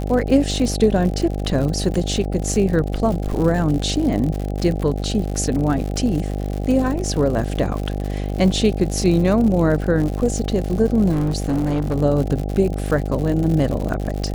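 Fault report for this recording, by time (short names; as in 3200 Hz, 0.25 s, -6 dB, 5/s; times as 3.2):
buzz 50 Hz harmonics 16 -24 dBFS
crackle 110/s -25 dBFS
11.11–11.95 clipped -16 dBFS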